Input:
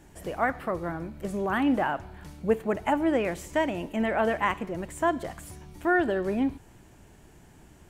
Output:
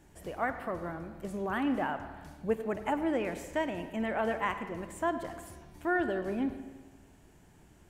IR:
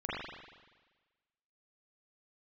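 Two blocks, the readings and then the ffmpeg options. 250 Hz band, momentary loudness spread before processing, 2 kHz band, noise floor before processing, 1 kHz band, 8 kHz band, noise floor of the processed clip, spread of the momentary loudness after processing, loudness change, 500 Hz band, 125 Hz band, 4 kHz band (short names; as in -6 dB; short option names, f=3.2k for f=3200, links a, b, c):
-5.5 dB, 10 LU, -5.5 dB, -54 dBFS, -5.5 dB, -6.0 dB, -59 dBFS, 13 LU, -5.5 dB, -5.5 dB, -6.0 dB, -5.5 dB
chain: -filter_complex "[0:a]asplit=2[a][b];[1:a]atrim=start_sample=2205,adelay=51[c];[b][c]afir=irnorm=-1:irlink=0,volume=-16dB[d];[a][d]amix=inputs=2:normalize=0,volume=-6dB"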